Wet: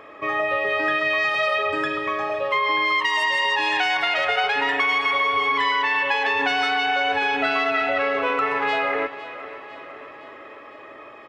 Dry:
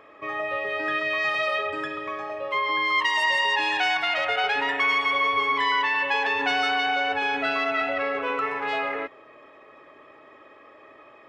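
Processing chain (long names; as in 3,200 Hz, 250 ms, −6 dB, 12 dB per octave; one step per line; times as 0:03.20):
downward compressor, threshold −25 dBFS, peak gain reduction 7 dB
repeating echo 506 ms, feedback 58%, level −15.5 dB
level +7 dB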